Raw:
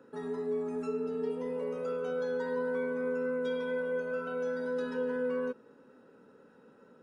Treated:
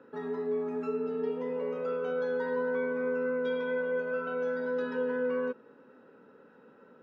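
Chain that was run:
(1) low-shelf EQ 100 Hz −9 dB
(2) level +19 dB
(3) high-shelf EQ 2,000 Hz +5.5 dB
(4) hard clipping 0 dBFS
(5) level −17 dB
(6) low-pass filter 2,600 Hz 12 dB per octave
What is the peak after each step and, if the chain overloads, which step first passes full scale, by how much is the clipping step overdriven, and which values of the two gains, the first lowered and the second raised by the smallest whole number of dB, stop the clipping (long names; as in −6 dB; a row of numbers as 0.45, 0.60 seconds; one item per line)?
−25.0, −6.0, −5.0, −5.0, −22.0, −22.0 dBFS
no step passes full scale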